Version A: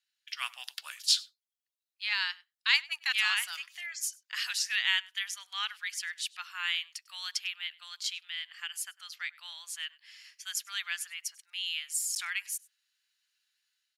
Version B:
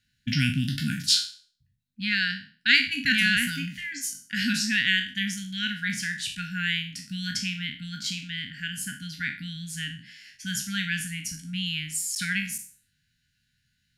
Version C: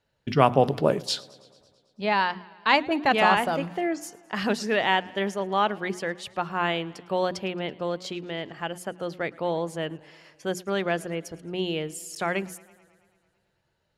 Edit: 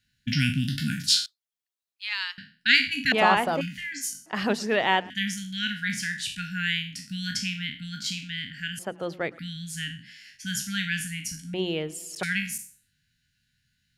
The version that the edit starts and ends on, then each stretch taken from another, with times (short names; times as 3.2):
B
1.26–2.38 from A
3.12–3.61 from C
4.26–5.1 from C
8.79–9.39 from C
11.54–12.23 from C